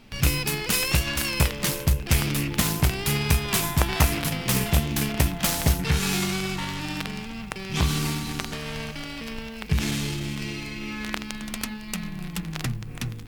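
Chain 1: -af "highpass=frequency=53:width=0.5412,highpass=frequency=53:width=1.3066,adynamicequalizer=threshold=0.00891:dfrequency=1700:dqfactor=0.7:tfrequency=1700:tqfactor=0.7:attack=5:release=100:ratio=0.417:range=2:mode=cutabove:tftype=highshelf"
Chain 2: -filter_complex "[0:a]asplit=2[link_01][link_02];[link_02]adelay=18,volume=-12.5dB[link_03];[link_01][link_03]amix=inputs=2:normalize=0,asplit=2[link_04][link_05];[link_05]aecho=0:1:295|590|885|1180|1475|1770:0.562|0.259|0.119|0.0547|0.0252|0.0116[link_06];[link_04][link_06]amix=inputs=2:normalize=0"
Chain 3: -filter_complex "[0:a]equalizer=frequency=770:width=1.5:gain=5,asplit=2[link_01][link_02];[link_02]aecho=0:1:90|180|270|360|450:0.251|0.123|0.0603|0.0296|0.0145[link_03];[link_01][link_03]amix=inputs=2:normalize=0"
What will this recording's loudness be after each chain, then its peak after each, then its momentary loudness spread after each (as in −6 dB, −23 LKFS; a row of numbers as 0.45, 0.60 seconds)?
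−27.5, −24.0, −25.0 LKFS; −3.5, −4.5, −3.5 dBFS; 10, 9, 11 LU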